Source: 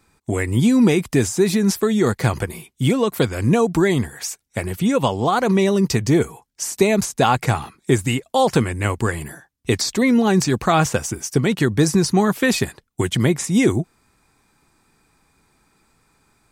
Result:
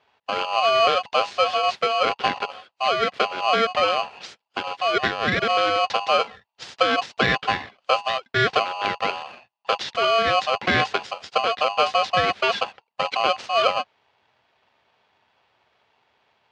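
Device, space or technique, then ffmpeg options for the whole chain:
ring modulator pedal into a guitar cabinet: -af "aeval=exprs='val(0)*sgn(sin(2*PI*910*n/s))':c=same,highpass=110,equalizer=f=160:t=q:w=4:g=-4,equalizer=f=290:t=q:w=4:g=-4,equalizer=f=1100:t=q:w=4:g=-4,lowpass=f=4100:w=0.5412,lowpass=f=4100:w=1.3066,volume=0.75"

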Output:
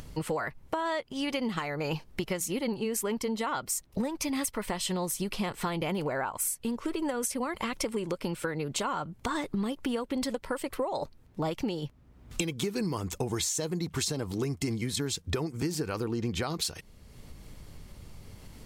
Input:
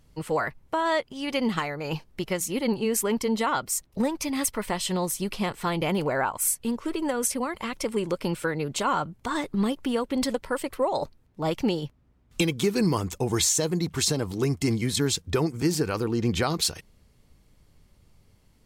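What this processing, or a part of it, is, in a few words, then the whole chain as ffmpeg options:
upward and downward compression: -af "acompressor=mode=upward:threshold=0.00794:ratio=2.5,acompressor=threshold=0.02:ratio=6,volume=1.78"

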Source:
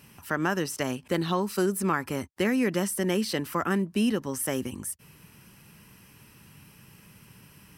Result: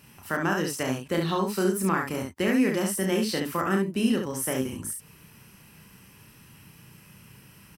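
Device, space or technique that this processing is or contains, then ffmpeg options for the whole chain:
slapback doubling: -filter_complex "[0:a]asplit=3[s0][s1][s2];[s1]adelay=31,volume=0.596[s3];[s2]adelay=69,volume=0.596[s4];[s0][s3][s4]amix=inputs=3:normalize=0,volume=0.891"

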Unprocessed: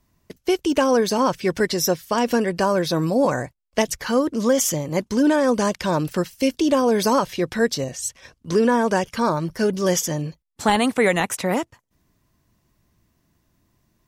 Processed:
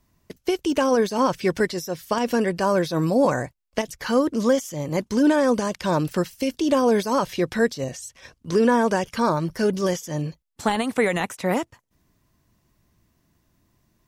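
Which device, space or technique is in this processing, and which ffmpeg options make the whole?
de-esser from a sidechain: -filter_complex "[0:a]asplit=2[s0][s1];[s1]highpass=6200,apad=whole_len=620571[s2];[s0][s2]sidechaincompress=threshold=0.0141:ratio=4:attack=2.6:release=97"

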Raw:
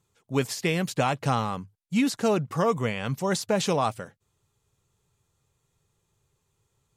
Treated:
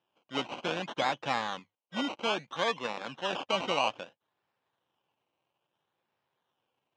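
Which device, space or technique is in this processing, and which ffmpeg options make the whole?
circuit-bent sampling toy: -filter_complex "[0:a]asettb=1/sr,asplit=3[s0][s1][s2];[s0]atrim=end=1.594[s3];[s1]atrim=start=1.59:end=3.53,asetpts=PTS-STARTPTS,afade=t=in:d=0.004:c=qsin,afade=t=out:st=1.936:d=0.004:c=qsin,highpass=f=200:p=1[s4];[s2]atrim=start=3.526[s5];[s3][s4]acrossfade=d=0.004:c1=hsin:c2=qsin[s6];[s6][s5]acrossfade=d=0.004:c1=qsin:c2=hsin,acrusher=samples=20:mix=1:aa=0.000001:lfo=1:lforange=12:lforate=0.61,highpass=410,equalizer=f=420:t=q:w=4:g=-9,equalizer=f=660:t=q:w=4:g=-4,equalizer=f=1300:t=q:w=4:g=-6,equalizer=f=2000:t=q:w=4:g=-6,equalizer=f=3000:t=q:w=4:g=6,equalizer=f=4500:t=q:w=4:g=-10,lowpass=f=5000:w=0.5412,lowpass=f=5000:w=1.3066"

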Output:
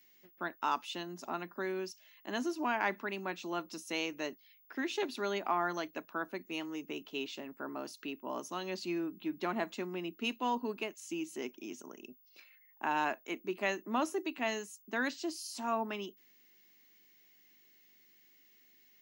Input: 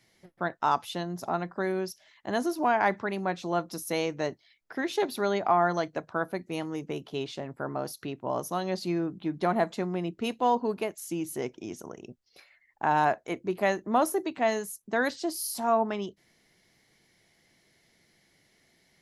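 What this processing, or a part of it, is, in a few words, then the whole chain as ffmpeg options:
old television with a line whistle: -af "highpass=f=220:w=0.5412,highpass=f=220:w=1.3066,equalizer=f=260:t=q:w=4:g=3,equalizer=f=500:t=q:w=4:g=-7,equalizer=f=730:t=q:w=4:g=-7,equalizer=f=2700:t=q:w=4:g=9,equalizer=f=6700:t=q:w=4:g=4,lowpass=f=8500:w=0.5412,lowpass=f=8500:w=1.3066,aeval=exprs='val(0)+0.00141*sin(2*PI*15625*n/s)':c=same,volume=0.531"

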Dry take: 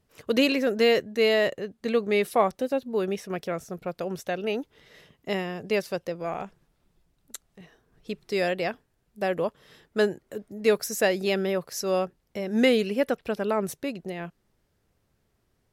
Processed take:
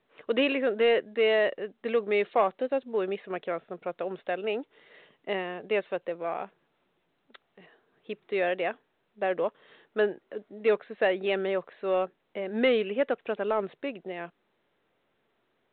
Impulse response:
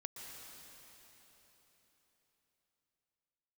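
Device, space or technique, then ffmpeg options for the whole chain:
telephone: -af "highpass=320,lowpass=3400,asoftclip=type=tanh:threshold=0.224" -ar 8000 -c:a pcm_mulaw

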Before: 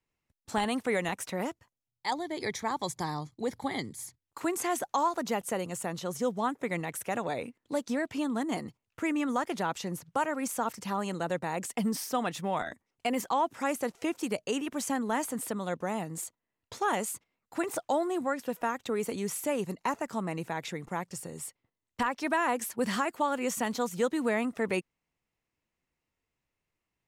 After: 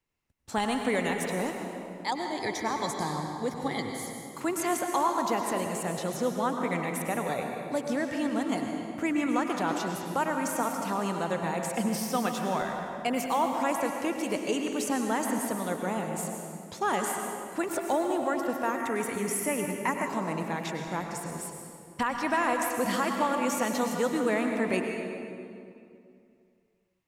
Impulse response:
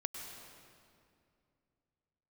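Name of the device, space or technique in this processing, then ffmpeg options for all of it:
stairwell: -filter_complex "[1:a]atrim=start_sample=2205[s0];[0:a][s0]afir=irnorm=-1:irlink=0,asettb=1/sr,asplit=3[s1][s2][s3];[s1]atrim=end=18.784[s4];[s2]atrim=start=18.78:end=20.07,asetpts=PTS-STARTPTS,afade=t=in:d=0.004:c=qsin,afade=t=out:st=1.286:d=0.004:c=qsin,equalizer=f=500:t=o:w=0.33:g=-6,equalizer=f=2000:t=o:w=0.33:g=9,equalizer=f=4000:t=o:w=0.33:g=-10,equalizer=f=10000:t=o:w=0.33:g=7[s5];[s3]atrim=start=20.066[s6];[s4][s5]acrossfade=d=0.004:c1=hsin:c2=qsin[s7];[s7][s6]acrossfade=d=0.004:c1=qsin:c2=hsin,volume=1.33"

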